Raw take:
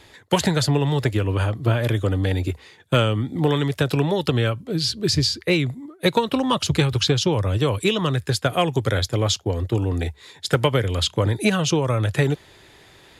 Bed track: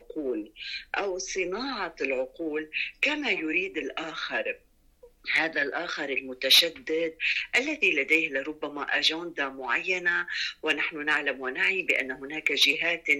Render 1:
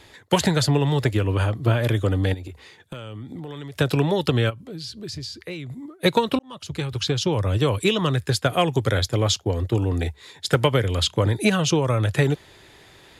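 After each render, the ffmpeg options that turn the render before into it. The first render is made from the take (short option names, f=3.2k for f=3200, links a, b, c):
-filter_complex "[0:a]asplit=3[a][b][c];[a]afade=t=out:st=2.33:d=0.02[d];[b]acompressor=threshold=-31dB:ratio=12:attack=3.2:release=140:knee=1:detection=peak,afade=t=in:st=2.33:d=0.02,afade=t=out:st=3.74:d=0.02[e];[c]afade=t=in:st=3.74:d=0.02[f];[d][e][f]amix=inputs=3:normalize=0,asplit=3[g][h][i];[g]afade=t=out:st=4.49:d=0.02[j];[h]acompressor=threshold=-37dB:ratio=2.5:attack=3.2:release=140:knee=1:detection=peak,afade=t=in:st=4.49:d=0.02,afade=t=out:st=5.7:d=0.02[k];[i]afade=t=in:st=5.7:d=0.02[l];[j][k][l]amix=inputs=3:normalize=0,asplit=2[m][n];[m]atrim=end=6.39,asetpts=PTS-STARTPTS,afade=t=out:st=6.386:d=0.004:c=hsin[o];[n]atrim=start=6.39,asetpts=PTS-STARTPTS,afade=t=in:d=1.14[p];[o][p]concat=n=2:v=0:a=1"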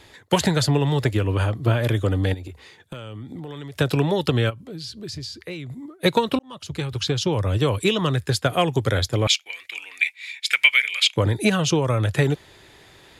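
-filter_complex "[0:a]asettb=1/sr,asplit=3[a][b][c];[a]atrim=end=9.274[d];[b]atrim=start=9.27:end=11.16,asetpts=PTS-STARTPTS,afade=t=in:d=0.004:c=qsin,afade=t=out:st=1.886:d=0.004:c=qsin,highpass=f=2.3k:t=q:w=13[e];[c]atrim=start=11.156[f];[d][e]acrossfade=d=0.004:c1=hsin:c2=qsin[g];[g][f]acrossfade=d=0.004:c1=qsin:c2=hsin"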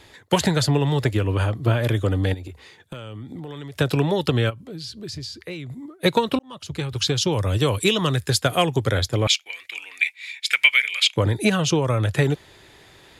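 -filter_complex "[0:a]asettb=1/sr,asplit=3[a][b][c];[a]atrim=end=6.964[d];[b]atrim=start=6.96:end=8.66,asetpts=PTS-STARTPTS,afade=t=in:d=0.004:c=qsin,afade=t=out:st=1.696:d=0.004:c=qsin,highshelf=f=3.8k:g=7[e];[c]atrim=start=8.656[f];[d][e]acrossfade=d=0.004:c1=hsin:c2=qsin[g];[g][f]acrossfade=d=0.004:c1=qsin:c2=hsin"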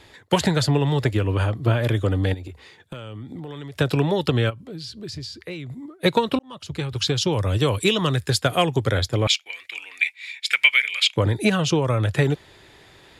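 -af "highshelf=f=9.3k:g=-6,bandreject=f=6.3k:w=29"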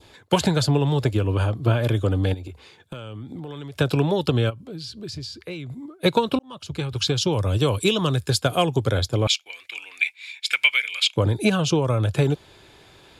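-af "bandreject=f=1.9k:w=6.4,adynamicequalizer=threshold=0.0126:dfrequency=1900:dqfactor=1.1:tfrequency=1900:tqfactor=1.1:attack=5:release=100:ratio=0.375:range=2.5:mode=cutabove:tftype=bell"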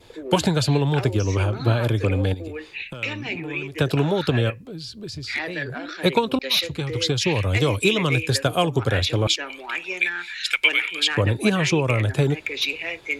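-filter_complex "[1:a]volume=-3dB[a];[0:a][a]amix=inputs=2:normalize=0"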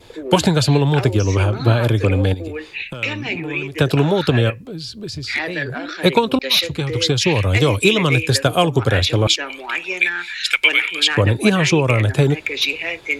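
-af "volume=5dB,alimiter=limit=-1dB:level=0:latency=1"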